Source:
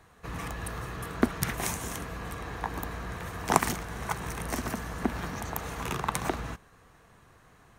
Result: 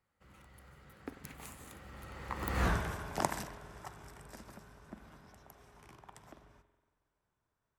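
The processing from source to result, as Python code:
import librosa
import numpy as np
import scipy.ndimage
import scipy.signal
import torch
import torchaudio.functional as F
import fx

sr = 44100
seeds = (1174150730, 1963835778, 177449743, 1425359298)

y = fx.doppler_pass(x, sr, speed_mps=43, closest_m=2.8, pass_at_s=2.66)
y = fx.rev_spring(y, sr, rt60_s=1.4, pass_ms=(46,), chirp_ms=55, drr_db=11.0)
y = y * librosa.db_to_amplitude(8.5)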